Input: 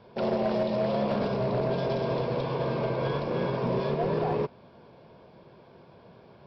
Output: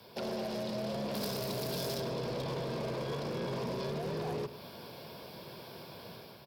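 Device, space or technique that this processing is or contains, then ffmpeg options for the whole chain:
FM broadcast chain: -filter_complex "[0:a]highpass=59,dynaudnorm=framelen=470:gausssize=3:maxgain=7dB,acrossover=split=200|510|1600[link_01][link_02][link_03][link_04];[link_01]acompressor=threshold=-29dB:ratio=4[link_05];[link_02]acompressor=threshold=-26dB:ratio=4[link_06];[link_03]acompressor=threshold=-33dB:ratio=4[link_07];[link_04]acompressor=threshold=-49dB:ratio=4[link_08];[link_05][link_06][link_07][link_08]amix=inputs=4:normalize=0,aemphasis=mode=production:type=75fm,alimiter=level_in=2.5dB:limit=-24dB:level=0:latency=1:release=17,volume=-2.5dB,asoftclip=type=hard:threshold=-29.5dB,lowpass=frequency=15000:width=0.5412,lowpass=frequency=15000:width=1.3066,aemphasis=mode=production:type=75fm,asettb=1/sr,asplit=3[link_09][link_10][link_11];[link_09]atrim=end=1.144[link_12];[link_10]atrim=start=1.14:end=2,asetpts=PTS-STARTPTS,afade=type=in:duration=0.004:curve=qsin,afade=type=out:start_time=0.856:duration=0.004:curve=qsin,aemphasis=mode=production:type=75fm[link_13];[link_11]atrim=start=1.996[link_14];[link_12][link_13]acrossfade=duration=0.004:curve1=hsin:curve2=qsin[link_15];[link_15][link_14]acrossfade=duration=0.004:curve1=qsin:curve2=hsin,aecho=1:1:103:0.188,volume=-2dB"

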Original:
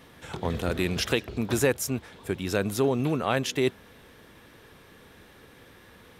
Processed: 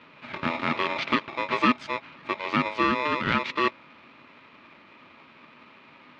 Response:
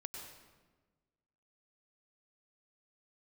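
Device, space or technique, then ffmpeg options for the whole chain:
ring modulator pedal into a guitar cabinet: -af "aeval=exprs='val(0)*sgn(sin(2*PI*750*n/s))':channel_layout=same,highpass=96,equalizer=frequency=150:width_type=q:width=4:gain=5,equalizer=frequency=240:width_type=q:width=4:gain=7,equalizer=frequency=470:width_type=q:width=4:gain=-5,equalizer=frequency=750:width_type=q:width=4:gain=-7,equalizer=frequency=1300:width_type=q:width=4:gain=4,equalizer=frequency=2300:width_type=q:width=4:gain=5,lowpass=frequency=3600:width=0.5412,lowpass=frequency=3600:width=1.3066"

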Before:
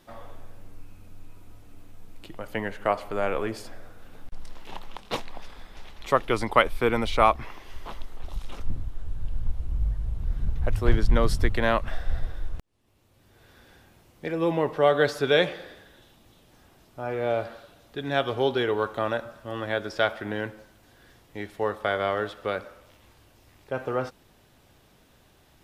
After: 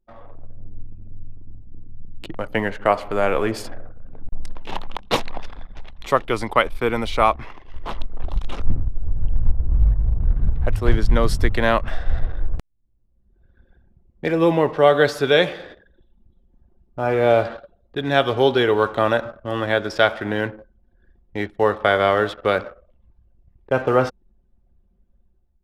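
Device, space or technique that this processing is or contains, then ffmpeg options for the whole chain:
voice memo with heavy noise removal: -af "anlmdn=0.0398,dynaudnorm=framelen=180:gausssize=5:maxgain=12dB,volume=-1dB"

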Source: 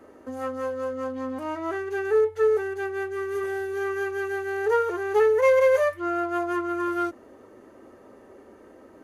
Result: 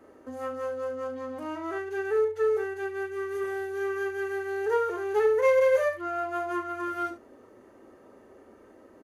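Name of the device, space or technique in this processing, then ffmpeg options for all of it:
slapback doubling: -filter_complex "[0:a]asplit=3[link_01][link_02][link_03];[link_02]adelay=36,volume=-8.5dB[link_04];[link_03]adelay=71,volume=-11dB[link_05];[link_01][link_04][link_05]amix=inputs=3:normalize=0,volume=-4.5dB"

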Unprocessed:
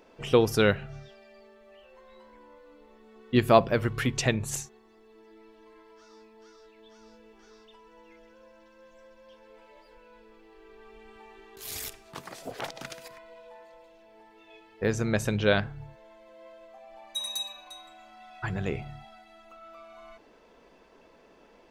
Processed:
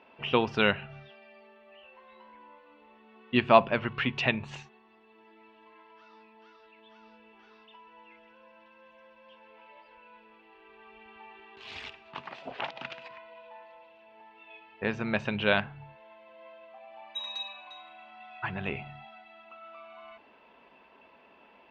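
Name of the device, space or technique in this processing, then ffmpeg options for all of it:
guitar cabinet: -af "highpass=93,equalizer=frequency=110:width_type=q:width=4:gain=-9,equalizer=frequency=170:width_type=q:width=4:gain=-5,equalizer=frequency=320:width_type=q:width=4:gain=-6,equalizer=frequency=470:width_type=q:width=4:gain=-7,equalizer=frequency=940:width_type=q:width=4:gain=5,equalizer=frequency=2700:width_type=q:width=4:gain=8,lowpass=frequency=3600:width=0.5412,lowpass=frequency=3600:width=1.3066"

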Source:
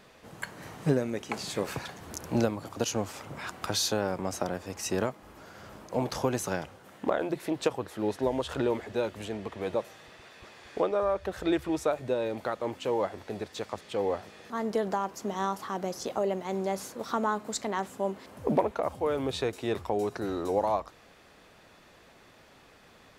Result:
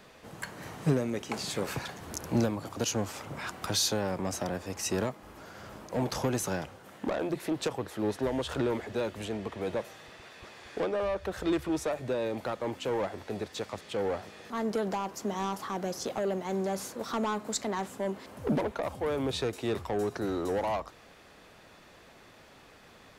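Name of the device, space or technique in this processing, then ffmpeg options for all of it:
one-band saturation: -filter_complex "[0:a]acrossover=split=270|4400[link_01][link_02][link_03];[link_02]asoftclip=type=tanh:threshold=-29dB[link_04];[link_01][link_04][link_03]amix=inputs=3:normalize=0,volume=1.5dB"

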